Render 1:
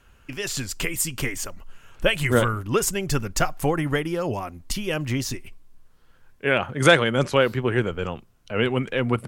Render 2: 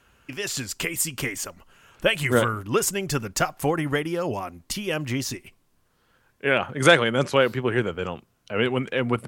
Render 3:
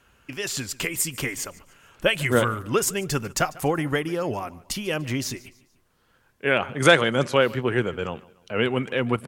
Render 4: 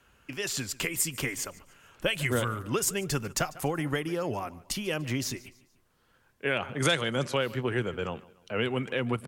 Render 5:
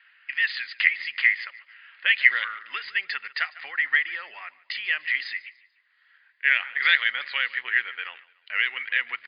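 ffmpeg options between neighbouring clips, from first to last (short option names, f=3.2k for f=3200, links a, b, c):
-af "highpass=f=130:p=1"
-af "aecho=1:1:146|292|438:0.0841|0.0345|0.0141"
-filter_complex "[0:a]acrossover=split=140|3000[a][b][c];[b]acompressor=threshold=-24dB:ratio=3[d];[a][d][c]amix=inputs=3:normalize=0,volume=-3dB"
-af "highpass=f=1.9k:t=q:w=8.7,acrusher=bits=8:mode=log:mix=0:aa=0.000001,volume=1.5dB" -ar 11025 -c:a libmp3lame -b:a 40k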